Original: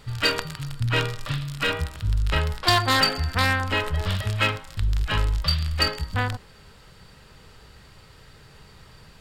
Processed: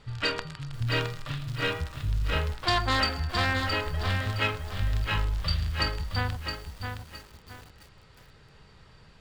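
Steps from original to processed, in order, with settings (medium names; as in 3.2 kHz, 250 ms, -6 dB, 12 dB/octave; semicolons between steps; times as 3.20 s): distance through air 65 m; bit-crushed delay 666 ms, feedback 35%, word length 7-bit, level -5.5 dB; trim -5 dB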